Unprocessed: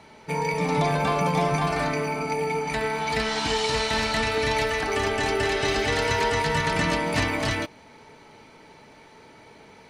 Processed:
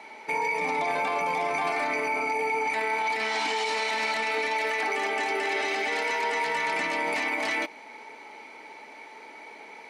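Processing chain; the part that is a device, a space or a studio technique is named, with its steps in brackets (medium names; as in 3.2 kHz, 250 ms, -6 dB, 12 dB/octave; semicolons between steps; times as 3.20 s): laptop speaker (high-pass 260 Hz 24 dB/octave; peaking EQ 830 Hz +7.5 dB 0.45 oct; peaking EQ 2.2 kHz +11.5 dB 0.34 oct; peak limiter -19.5 dBFS, peak gain reduction 11.5 dB)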